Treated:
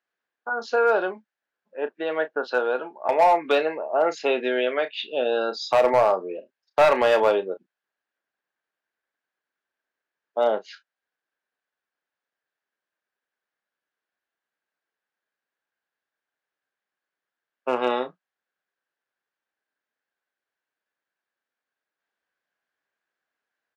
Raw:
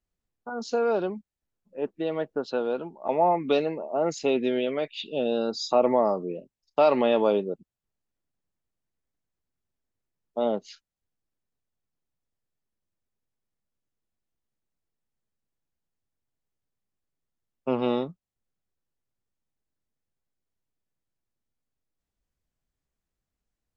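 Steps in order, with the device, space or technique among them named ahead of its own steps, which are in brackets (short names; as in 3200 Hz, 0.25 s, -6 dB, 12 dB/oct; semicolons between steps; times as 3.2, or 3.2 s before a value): megaphone (BPF 540–3500 Hz; bell 1600 Hz +11.5 dB 0.33 oct; hard clip -18.5 dBFS, distortion -15 dB; doubler 32 ms -11.5 dB); gain +6.5 dB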